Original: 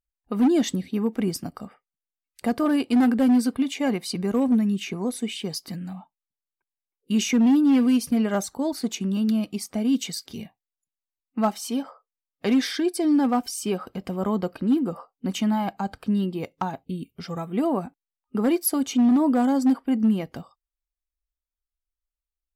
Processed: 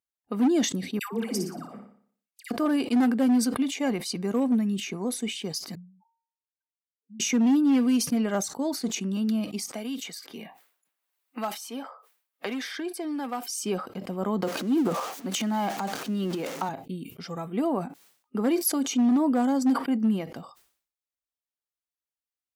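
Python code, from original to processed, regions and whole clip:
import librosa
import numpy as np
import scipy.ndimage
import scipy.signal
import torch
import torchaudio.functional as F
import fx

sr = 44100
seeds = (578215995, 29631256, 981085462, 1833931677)

y = fx.chain(x, sr, fx.low_shelf(hz=180.0, db=-6.5),
    fx.dispersion(late='lows', ms=139.0, hz=990.0),
    fx.room_flutter(wall_m=10.2, rt60_s=0.5), at=(0.99, 2.51))
y = fx.chain(y, sr, fx.spec_expand(power=3.5),
    fx.peak_eq(hz=350.0, db=-8.5, octaves=1.9),
    fx.comb_fb(f0_hz=460.0, decay_s=0.68, harmonics='all', damping=0.0, mix_pct=80), at=(5.75, 7.2))
y = fx.chain(y, sr, fx.highpass(hz=770.0, slope=6),
    fx.peak_eq(hz=6100.0, db=-7.0, octaves=1.6),
    fx.band_squash(depth_pct=70), at=(9.72, 13.49))
y = fx.chain(y, sr, fx.zero_step(step_db=-38.0),
    fx.highpass(hz=200.0, slope=12),
    fx.transient(attack_db=-1, sustain_db=11), at=(14.42, 16.69))
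y = scipy.signal.sosfilt(scipy.signal.butter(2, 160.0, 'highpass', fs=sr, output='sos'), y)
y = fx.dynamic_eq(y, sr, hz=6300.0, q=3.0, threshold_db=-51.0, ratio=4.0, max_db=5)
y = fx.sustainer(y, sr, db_per_s=110.0)
y = y * 10.0 ** (-2.5 / 20.0)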